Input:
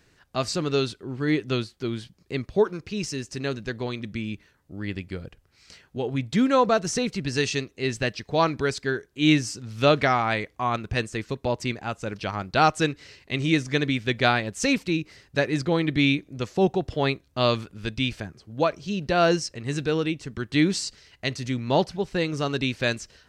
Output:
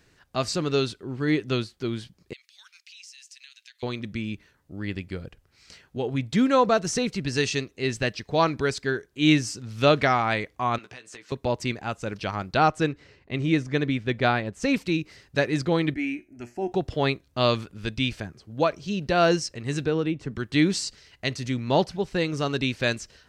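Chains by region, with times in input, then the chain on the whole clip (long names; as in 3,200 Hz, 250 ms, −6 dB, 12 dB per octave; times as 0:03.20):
0:02.33–0:03.83: inverse Chebyshev high-pass filter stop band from 390 Hz, stop band 80 dB + downward compressor 4 to 1, threshold −45 dBFS
0:10.78–0:11.32: meter weighting curve A + downward compressor 12 to 1, threshold −40 dBFS + double-tracking delay 16 ms −7.5 dB
0:12.57–0:14.74: high-shelf EQ 2,700 Hz −9.5 dB + one half of a high-frequency compander decoder only
0:15.94–0:16.72: phaser with its sweep stopped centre 740 Hz, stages 8 + tuned comb filter 120 Hz, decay 0.24 s
0:19.85–0:20.36: high-shelf EQ 2,300 Hz −10.5 dB + multiband upward and downward compressor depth 70%
whole clip: no processing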